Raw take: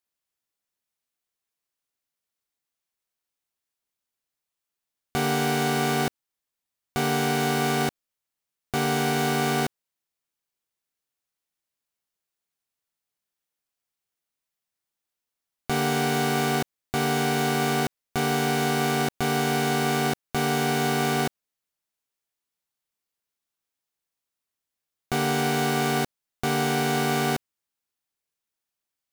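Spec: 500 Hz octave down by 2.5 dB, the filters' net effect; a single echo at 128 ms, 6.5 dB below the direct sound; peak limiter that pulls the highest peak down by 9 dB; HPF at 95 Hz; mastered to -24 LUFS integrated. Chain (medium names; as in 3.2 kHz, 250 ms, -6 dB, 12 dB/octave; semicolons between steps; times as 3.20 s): high-pass 95 Hz; peaking EQ 500 Hz -3.5 dB; peak limiter -20.5 dBFS; delay 128 ms -6.5 dB; trim +6 dB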